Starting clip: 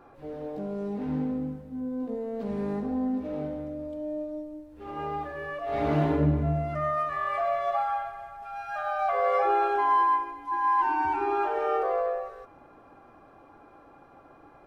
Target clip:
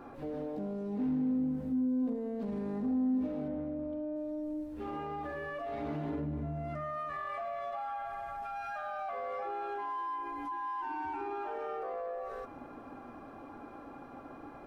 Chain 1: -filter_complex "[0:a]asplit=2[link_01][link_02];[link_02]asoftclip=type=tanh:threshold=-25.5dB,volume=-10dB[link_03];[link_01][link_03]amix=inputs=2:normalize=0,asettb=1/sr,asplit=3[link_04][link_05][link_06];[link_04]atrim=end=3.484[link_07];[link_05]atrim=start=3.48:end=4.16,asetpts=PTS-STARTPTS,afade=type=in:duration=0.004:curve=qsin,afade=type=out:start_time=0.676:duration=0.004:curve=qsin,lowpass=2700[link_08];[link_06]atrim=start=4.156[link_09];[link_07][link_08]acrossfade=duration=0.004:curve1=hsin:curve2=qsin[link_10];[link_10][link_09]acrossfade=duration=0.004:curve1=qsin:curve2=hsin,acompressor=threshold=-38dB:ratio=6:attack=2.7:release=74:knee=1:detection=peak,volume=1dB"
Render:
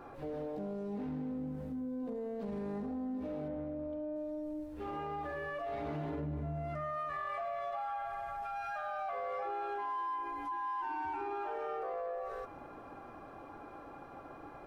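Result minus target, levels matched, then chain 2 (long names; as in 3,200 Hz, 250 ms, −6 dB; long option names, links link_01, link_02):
250 Hz band −4.0 dB
-filter_complex "[0:a]asplit=2[link_01][link_02];[link_02]asoftclip=type=tanh:threshold=-25.5dB,volume=-10dB[link_03];[link_01][link_03]amix=inputs=2:normalize=0,asettb=1/sr,asplit=3[link_04][link_05][link_06];[link_04]atrim=end=3.484[link_07];[link_05]atrim=start=3.48:end=4.16,asetpts=PTS-STARTPTS,afade=type=in:duration=0.004:curve=qsin,afade=type=out:start_time=0.676:duration=0.004:curve=qsin,lowpass=2700[link_08];[link_06]atrim=start=4.156[link_09];[link_07][link_08]acrossfade=duration=0.004:curve1=hsin:curve2=qsin[link_10];[link_10][link_09]acrossfade=duration=0.004:curve1=qsin:curve2=hsin,acompressor=threshold=-38dB:ratio=6:attack=2.7:release=74:knee=1:detection=peak,equalizer=frequency=250:width_type=o:width=0.45:gain=9,volume=1dB"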